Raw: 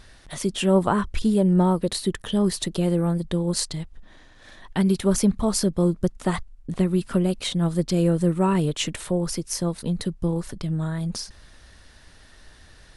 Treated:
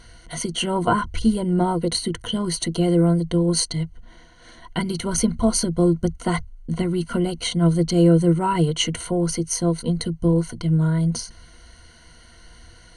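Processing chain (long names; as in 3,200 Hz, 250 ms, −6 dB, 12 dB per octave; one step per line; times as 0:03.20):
EQ curve with evenly spaced ripples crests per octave 1.9, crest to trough 16 dB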